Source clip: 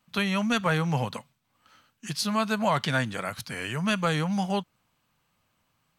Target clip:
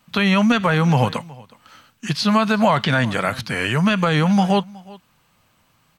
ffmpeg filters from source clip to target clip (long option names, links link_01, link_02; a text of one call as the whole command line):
ffmpeg -i in.wav -filter_complex "[0:a]acrossover=split=4600[link_01][link_02];[link_02]acompressor=threshold=-51dB:ratio=4:attack=1:release=60[link_03];[link_01][link_03]amix=inputs=2:normalize=0,aecho=1:1:368:0.0668,alimiter=level_in=16.5dB:limit=-1dB:release=50:level=0:latency=1,volume=-5dB" out.wav